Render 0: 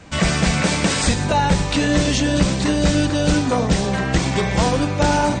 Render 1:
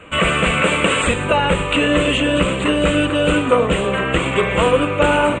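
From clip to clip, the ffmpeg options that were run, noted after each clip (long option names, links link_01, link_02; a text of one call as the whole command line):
ffmpeg -i in.wav -af "firequalizer=gain_entry='entry(180,0);entry(500,12);entry(780,0);entry(1200,14);entry(1700,5);entry(2800,14);entry(5300,-28);entry(7500,3)':delay=0.05:min_phase=1,volume=-3.5dB" out.wav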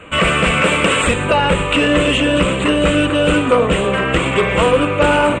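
ffmpeg -i in.wav -af "acontrast=35,volume=-2.5dB" out.wav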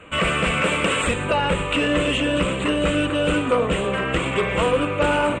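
ffmpeg -i in.wav -af "volume=-6dB" -ar 44100 -c:a libmp3lame -b:a 128k out.mp3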